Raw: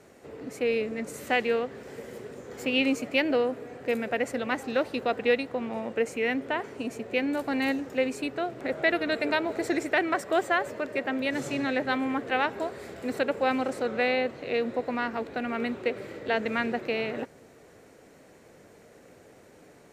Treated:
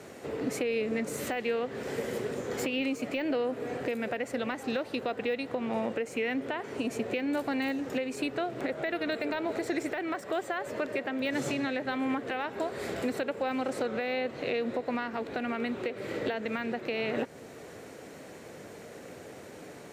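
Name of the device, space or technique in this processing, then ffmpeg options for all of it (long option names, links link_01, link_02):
broadcast voice chain: -af "highpass=75,deesser=0.95,acompressor=threshold=-33dB:ratio=3,equalizer=frequency=3400:width_type=o:width=0.77:gain=2,alimiter=level_in=4dB:limit=-24dB:level=0:latency=1:release=375,volume=-4dB,volume=7.5dB"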